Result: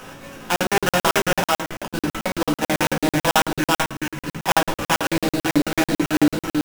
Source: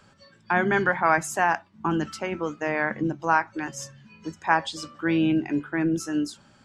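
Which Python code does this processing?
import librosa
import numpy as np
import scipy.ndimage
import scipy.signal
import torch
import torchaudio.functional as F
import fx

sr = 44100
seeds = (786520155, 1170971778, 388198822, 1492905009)

p1 = fx.bin_compress(x, sr, power=0.6)
p2 = fx.rider(p1, sr, range_db=10, speed_s=2.0)
p3 = p1 + F.gain(torch.from_numpy(p2), -2.5).numpy()
p4 = fx.gate_flip(p3, sr, shuts_db=-12.0, range_db=-29, at=(1.39, 1.94))
p5 = fx.fixed_phaser(p4, sr, hz=1600.0, stages=4, at=(3.6, 4.29))
p6 = fx.sample_hold(p5, sr, seeds[0], rate_hz=4300.0, jitter_pct=20)
p7 = p6 + fx.echo_single(p6, sr, ms=405, db=-3.0, dry=0)
p8 = fx.room_shoebox(p7, sr, seeds[1], volume_m3=130.0, walls='furnished', distance_m=1.9)
p9 = fx.buffer_crackle(p8, sr, first_s=0.56, period_s=0.11, block=2048, kind='zero')
y = F.gain(torch.from_numpy(p9), -6.5).numpy()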